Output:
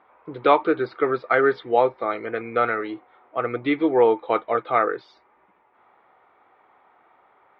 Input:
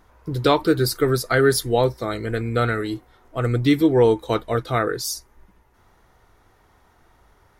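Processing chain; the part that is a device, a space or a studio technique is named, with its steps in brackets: air absorption 470 m; phone earpiece (speaker cabinet 350–4000 Hz, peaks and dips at 560 Hz +3 dB, 800 Hz +7 dB, 1200 Hz +7 dB, 2300 Hz +9 dB, 3500 Hz +4 dB)

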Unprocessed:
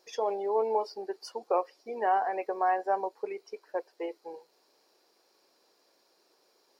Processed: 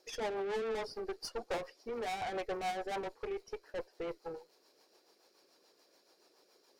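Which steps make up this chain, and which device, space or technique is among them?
overdriven rotary cabinet (tube stage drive 38 dB, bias 0.6; rotary speaker horn 7 Hz); gain +5.5 dB

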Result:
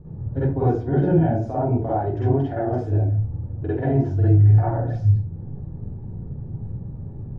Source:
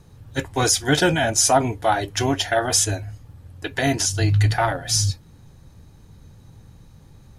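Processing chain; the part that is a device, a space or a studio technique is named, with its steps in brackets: television next door (compressor 3:1, threshold -31 dBFS, peak gain reduction 14.5 dB; LPF 440 Hz 12 dB/oct; reverb RT60 0.40 s, pre-delay 43 ms, DRR -9 dB); gain +5.5 dB

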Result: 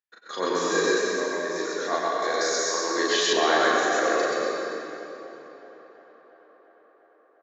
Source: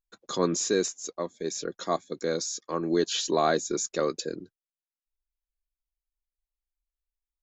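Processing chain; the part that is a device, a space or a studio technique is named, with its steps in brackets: station announcement (BPF 420–4400 Hz; bell 1800 Hz +12 dB 0.42 oct; loudspeakers at several distances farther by 13 m -1 dB, 45 m 0 dB; reverb RT60 3.1 s, pre-delay 90 ms, DRR -2.5 dB); 2.22–3.33 tone controls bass -5 dB, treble +10 dB; tape echo 0.349 s, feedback 81%, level -22 dB, low-pass 3900 Hz; gain -2.5 dB

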